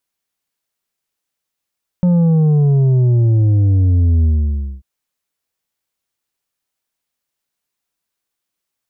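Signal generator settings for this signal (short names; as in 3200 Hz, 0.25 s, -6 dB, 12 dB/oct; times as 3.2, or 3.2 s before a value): sub drop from 180 Hz, over 2.79 s, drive 6 dB, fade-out 0.58 s, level -10 dB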